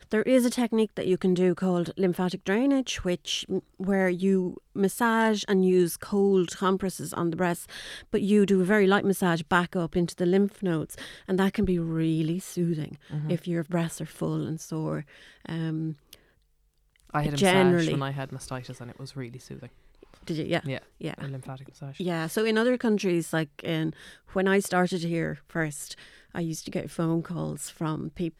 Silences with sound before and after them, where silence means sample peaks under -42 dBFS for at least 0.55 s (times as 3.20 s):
16.15–17.00 s